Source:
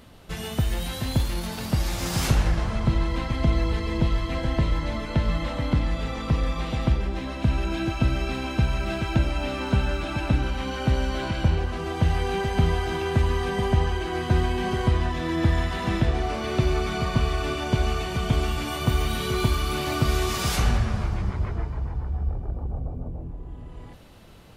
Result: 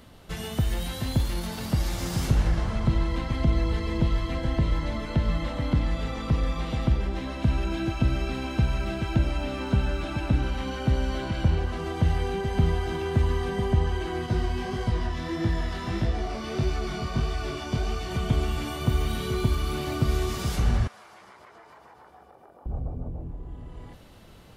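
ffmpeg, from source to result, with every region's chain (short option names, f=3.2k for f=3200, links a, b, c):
-filter_complex "[0:a]asettb=1/sr,asplit=3[a][b][c];[a]atrim=end=14.264[d];[b]atrim=start=14.26:end=18.11,asetpts=PTS-STARTPTS,afade=t=in:d=0.004:c=qsin,afade=t=out:st=3.846:d=0.004:c=qsin,equalizer=f=5.2k:t=o:w=0.42:g=6,flanger=delay=17.5:depth=6.1:speed=1.6[e];[c]atrim=start=18.106[f];[d][e]acrossfade=d=0.004:c1=hsin:c2=qsin[g];[g][f]acrossfade=d=0.004:c1=qsin:c2=hsin,asettb=1/sr,asplit=3[h][i][j];[h]atrim=end=20.874[k];[i]atrim=start=20.87:end=22.66,asetpts=PTS-STARTPTS,afade=t=in:d=0.004:c=qsin,afade=t=out:st=1.786:d=0.004:c=qsin,highpass=630,equalizer=f=11k:w=1.4:g=7,acompressor=threshold=-45dB:ratio=8:attack=3.2:release=140:knee=1:detection=peak[l];[j]atrim=start=22.656[m];[k][l]acrossfade=d=0.004:c1=hsin:c2=qsin[n];[n][m]acrossfade=d=0.004:c1=qsin:c2=hsin,bandreject=f=2.5k:w=23,acrossover=split=480[o][p];[p]acompressor=threshold=-33dB:ratio=6[q];[o][q]amix=inputs=2:normalize=0,volume=-1dB"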